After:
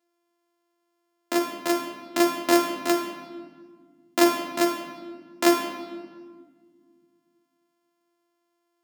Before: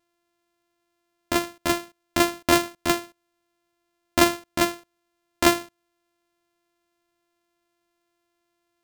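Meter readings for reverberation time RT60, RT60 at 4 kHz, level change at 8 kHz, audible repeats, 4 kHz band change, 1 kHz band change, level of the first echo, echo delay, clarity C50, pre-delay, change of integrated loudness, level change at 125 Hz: 1.7 s, 1.2 s, -3.0 dB, no echo, -3.0 dB, -1.0 dB, no echo, no echo, 6.0 dB, 6 ms, -1.0 dB, under -10 dB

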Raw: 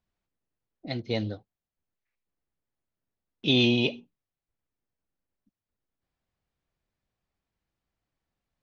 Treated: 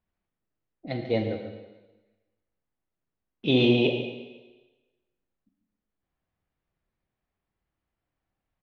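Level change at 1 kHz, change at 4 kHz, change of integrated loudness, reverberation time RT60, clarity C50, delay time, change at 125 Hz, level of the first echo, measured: +4.0 dB, -3.0 dB, +0.5 dB, 1.2 s, 5.0 dB, 141 ms, +1.5 dB, -11.5 dB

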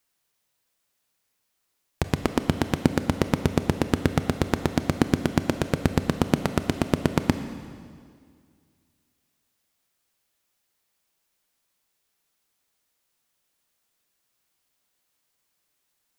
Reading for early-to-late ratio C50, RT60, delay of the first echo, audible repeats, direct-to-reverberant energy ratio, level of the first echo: 10.0 dB, 2.0 s, no echo, no echo, 9.0 dB, no echo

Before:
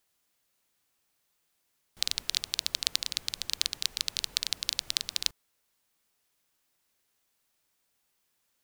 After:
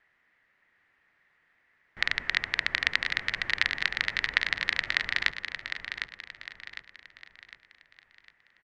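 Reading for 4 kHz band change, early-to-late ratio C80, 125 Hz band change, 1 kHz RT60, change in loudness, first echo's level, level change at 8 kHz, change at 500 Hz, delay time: -2.5 dB, no reverb, +7.5 dB, no reverb, +2.0 dB, -8.0 dB, -15.0 dB, +8.0 dB, 755 ms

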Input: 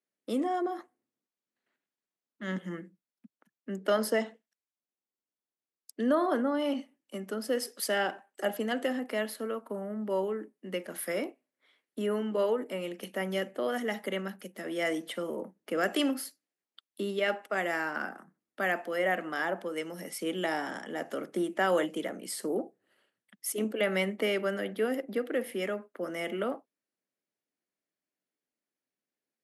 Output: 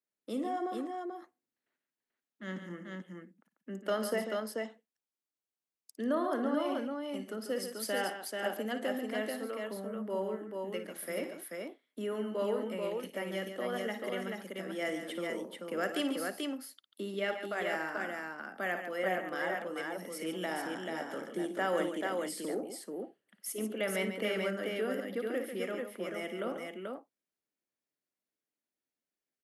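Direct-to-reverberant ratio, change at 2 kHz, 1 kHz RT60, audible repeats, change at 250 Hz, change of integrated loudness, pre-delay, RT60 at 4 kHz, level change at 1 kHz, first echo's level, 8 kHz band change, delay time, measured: no reverb, -3.5 dB, no reverb, 3, -3.5 dB, -4.0 dB, no reverb, no reverb, -3.0 dB, -11.5 dB, -3.5 dB, 56 ms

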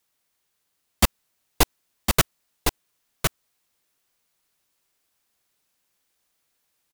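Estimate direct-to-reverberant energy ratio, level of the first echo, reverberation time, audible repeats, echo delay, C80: no reverb, -4.5 dB, no reverb, 1, 1059 ms, no reverb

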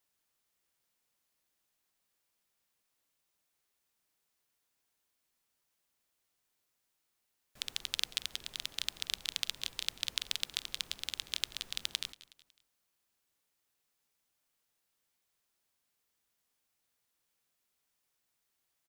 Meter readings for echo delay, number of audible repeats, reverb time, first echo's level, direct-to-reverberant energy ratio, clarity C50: 184 ms, 3, no reverb, -18.5 dB, no reverb, no reverb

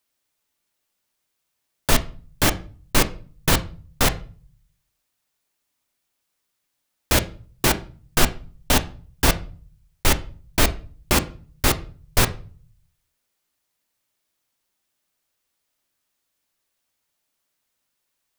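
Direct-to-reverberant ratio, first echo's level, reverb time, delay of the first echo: 9.0 dB, no echo, 0.40 s, no echo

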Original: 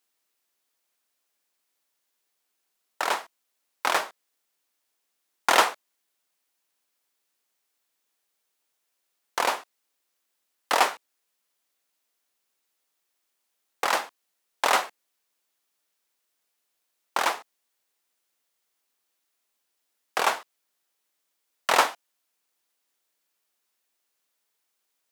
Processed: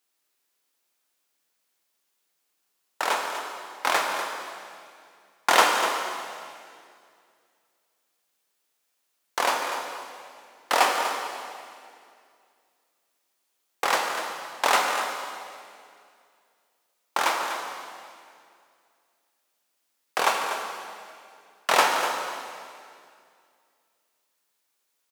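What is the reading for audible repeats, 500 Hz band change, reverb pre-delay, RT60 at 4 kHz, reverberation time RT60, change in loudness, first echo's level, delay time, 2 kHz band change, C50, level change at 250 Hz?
1, +2.5 dB, 11 ms, 2.1 s, 2.3 s, 0.0 dB, -10.5 dB, 245 ms, +2.5 dB, 2.5 dB, +2.5 dB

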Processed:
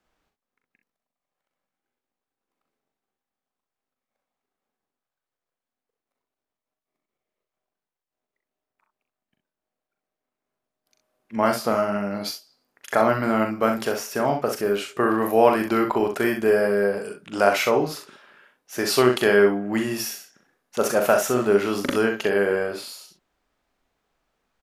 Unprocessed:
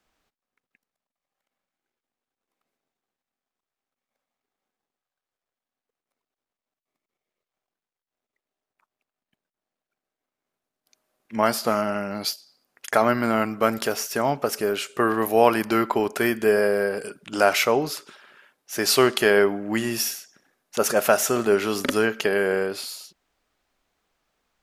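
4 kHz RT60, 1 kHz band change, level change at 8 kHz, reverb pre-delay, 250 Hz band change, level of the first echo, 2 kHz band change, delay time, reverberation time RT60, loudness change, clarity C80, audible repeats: no reverb, 0.0 dB, -4.0 dB, no reverb, +1.5 dB, -6.5 dB, -1.0 dB, 40 ms, no reverb, +0.5 dB, no reverb, 1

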